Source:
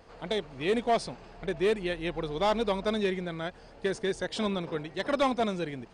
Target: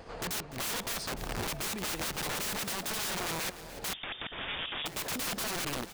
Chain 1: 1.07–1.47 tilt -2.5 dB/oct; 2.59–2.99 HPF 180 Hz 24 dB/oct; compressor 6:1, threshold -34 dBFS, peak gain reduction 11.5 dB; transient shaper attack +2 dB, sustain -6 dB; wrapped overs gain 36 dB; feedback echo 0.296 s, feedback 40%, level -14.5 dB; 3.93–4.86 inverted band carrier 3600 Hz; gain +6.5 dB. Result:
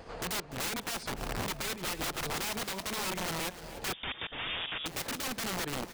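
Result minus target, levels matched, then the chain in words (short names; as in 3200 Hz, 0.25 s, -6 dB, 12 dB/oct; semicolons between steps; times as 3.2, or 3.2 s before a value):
compressor: peak gain reduction +8 dB
1.07–1.47 tilt -2.5 dB/oct; 2.59–2.99 HPF 180 Hz 24 dB/oct; compressor 6:1, threshold -24.5 dBFS, peak gain reduction 3.5 dB; transient shaper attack +2 dB, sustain -6 dB; wrapped overs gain 36 dB; feedback echo 0.296 s, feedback 40%, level -14.5 dB; 3.93–4.86 inverted band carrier 3600 Hz; gain +6.5 dB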